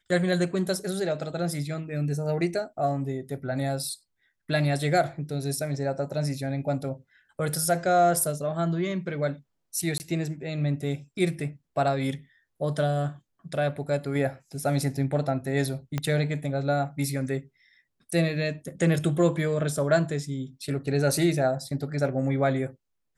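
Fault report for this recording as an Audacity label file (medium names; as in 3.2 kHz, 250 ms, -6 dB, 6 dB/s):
9.980000	10.000000	dropout 19 ms
15.980000	15.980000	pop -14 dBFS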